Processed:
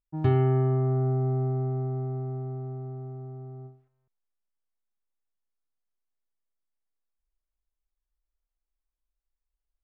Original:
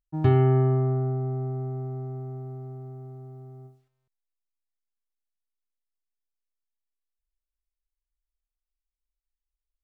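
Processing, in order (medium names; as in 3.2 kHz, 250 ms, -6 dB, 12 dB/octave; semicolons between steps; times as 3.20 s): level-controlled noise filter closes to 1.4 kHz, open at -22.5 dBFS; gain riding within 3 dB 0.5 s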